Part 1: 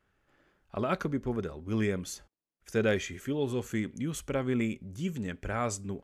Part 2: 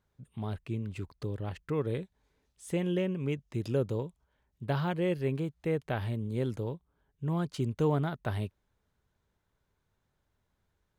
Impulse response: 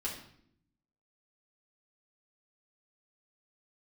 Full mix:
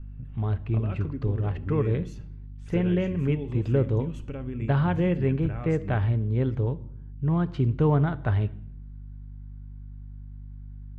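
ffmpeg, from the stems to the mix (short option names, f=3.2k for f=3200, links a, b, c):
-filter_complex "[0:a]equalizer=f=2.7k:w=5.9:g=12.5,acompressor=threshold=-42dB:ratio=2.5,volume=-3dB,asplit=2[a][b];[b]volume=-10dB[c];[1:a]aeval=exprs='val(0)+0.00355*(sin(2*PI*50*n/s)+sin(2*PI*2*50*n/s)/2+sin(2*PI*3*50*n/s)/3+sin(2*PI*4*50*n/s)/4+sin(2*PI*5*50*n/s)/5)':c=same,lowpass=f=3.9k:p=1,equalizer=f=2k:w=0.36:g=10,volume=-4dB,asplit=2[d][e];[e]volume=-12.5dB[f];[2:a]atrim=start_sample=2205[g];[c][f]amix=inputs=2:normalize=0[h];[h][g]afir=irnorm=-1:irlink=0[i];[a][d][i]amix=inputs=3:normalize=0,aemphasis=mode=reproduction:type=riaa"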